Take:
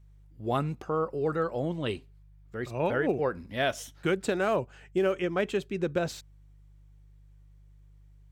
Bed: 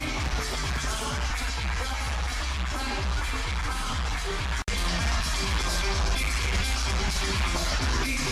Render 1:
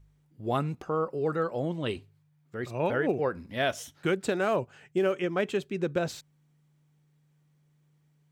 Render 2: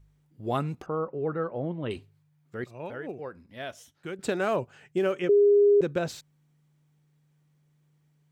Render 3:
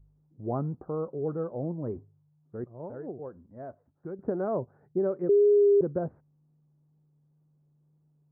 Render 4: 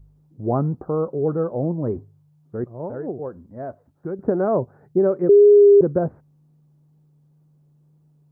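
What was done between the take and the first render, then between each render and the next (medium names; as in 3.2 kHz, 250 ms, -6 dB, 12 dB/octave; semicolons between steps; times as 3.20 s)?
de-hum 50 Hz, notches 2
0.86–1.91 s: distance through air 490 m; 2.64–4.19 s: gain -10 dB; 5.29–5.81 s: bleep 408 Hz -15.5 dBFS
Gaussian low-pass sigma 8.9 samples; wow and flutter 20 cents
trim +9.5 dB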